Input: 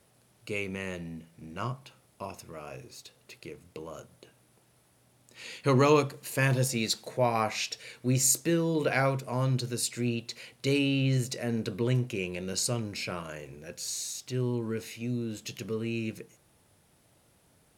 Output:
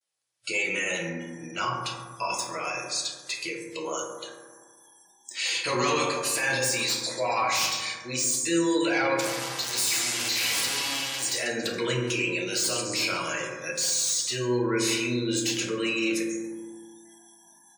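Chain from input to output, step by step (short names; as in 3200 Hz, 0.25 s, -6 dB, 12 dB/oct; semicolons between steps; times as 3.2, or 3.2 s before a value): 9.2–11.24 infinite clipping; gate with hold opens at -58 dBFS; weighting filter ITU-R 468; feedback echo 0.139 s, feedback 54%, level -19 dB; AGC gain up to 9.5 dB; spectral noise reduction 26 dB; overloaded stage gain 26.5 dB; spectral gate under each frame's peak -20 dB strong; HPF 95 Hz; reverb RT60 1.5 s, pre-delay 3 ms, DRR -2 dB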